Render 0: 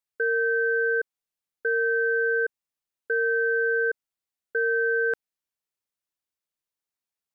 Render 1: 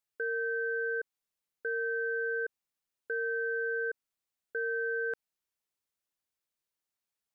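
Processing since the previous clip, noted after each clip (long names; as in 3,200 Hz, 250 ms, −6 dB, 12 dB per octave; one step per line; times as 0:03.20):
brickwall limiter −26.5 dBFS, peak gain reduction 9 dB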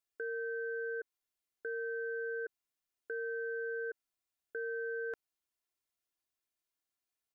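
comb filter 2.9 ms, depth 46%
level −3 dB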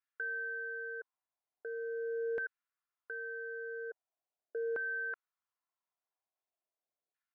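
auto-filter band-pass saw down 0.42 Hz 520–1,600 Hz
level +6.5 dB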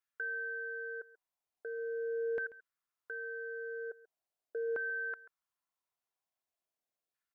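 single-tap delay 137 ms −18 dB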